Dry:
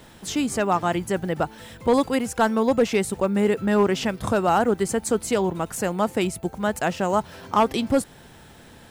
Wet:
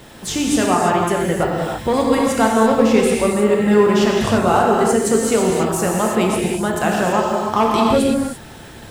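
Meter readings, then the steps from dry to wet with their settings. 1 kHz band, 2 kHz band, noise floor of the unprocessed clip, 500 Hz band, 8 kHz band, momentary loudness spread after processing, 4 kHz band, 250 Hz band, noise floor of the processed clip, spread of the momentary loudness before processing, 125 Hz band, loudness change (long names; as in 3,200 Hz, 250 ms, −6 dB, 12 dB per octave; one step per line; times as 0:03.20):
+6.5 dB, +6.0 dB, −48 dBFS, +6.5 dB, +8.0 dB, 6 LU, +7.0 dB, +7.0 dB, −38 dBFS, 6 LU, +6.5 dB, +6.5 dB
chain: in parallel at +1 dB: downward compressor, threshold −27 dBFS, peak gain reduction 12.5 dB
on the sum: reverb whose tail is shaped and stops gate 360 ms flat, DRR −2.5 dB
level −1 dB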